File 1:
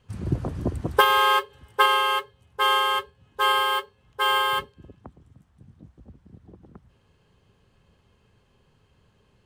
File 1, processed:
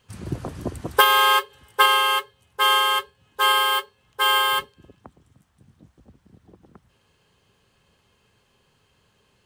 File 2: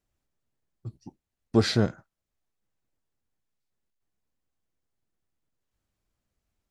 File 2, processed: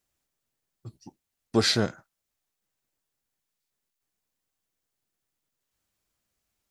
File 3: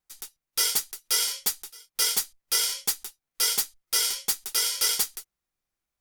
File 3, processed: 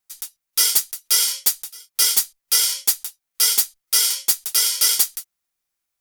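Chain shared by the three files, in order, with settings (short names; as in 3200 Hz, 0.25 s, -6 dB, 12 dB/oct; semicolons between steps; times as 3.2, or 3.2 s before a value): tilt +2 dB/oct; gain +1.5 dB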